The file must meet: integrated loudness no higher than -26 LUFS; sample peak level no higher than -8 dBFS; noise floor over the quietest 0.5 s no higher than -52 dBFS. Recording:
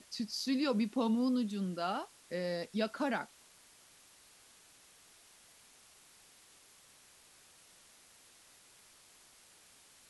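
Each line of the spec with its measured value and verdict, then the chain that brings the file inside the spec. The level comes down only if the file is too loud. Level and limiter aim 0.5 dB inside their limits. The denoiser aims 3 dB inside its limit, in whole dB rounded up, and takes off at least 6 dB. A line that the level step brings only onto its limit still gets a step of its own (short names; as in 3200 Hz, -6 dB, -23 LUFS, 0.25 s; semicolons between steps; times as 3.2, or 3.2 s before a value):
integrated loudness -35.0 LUFS: OK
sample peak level -20.5 dBFS: OK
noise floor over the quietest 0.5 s -62 dBFS: OK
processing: none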